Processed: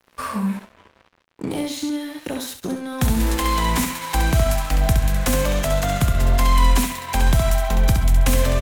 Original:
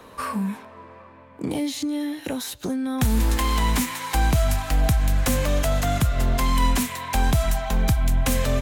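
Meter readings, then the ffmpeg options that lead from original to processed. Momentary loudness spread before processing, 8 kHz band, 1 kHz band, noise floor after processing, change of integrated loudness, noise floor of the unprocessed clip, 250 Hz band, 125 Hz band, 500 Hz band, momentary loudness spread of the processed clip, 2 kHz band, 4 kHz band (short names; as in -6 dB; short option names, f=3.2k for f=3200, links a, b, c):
8 LU, +2.5 dB, +3.0 dB, -60 dBFS, +2.5 dB, -46 dBFS, +1.0 dB, +2.5 dB, +3.5 dB, 10 LU, +2.5 dB, +2.5 dB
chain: -af "aecho=1:1:67|134|201|268:0.531|0.175|0.0578|0.0191,aeval=exprs='sgn(val(0))*max(abs(val(0))-0.01,0)':c=same,volume=2dB"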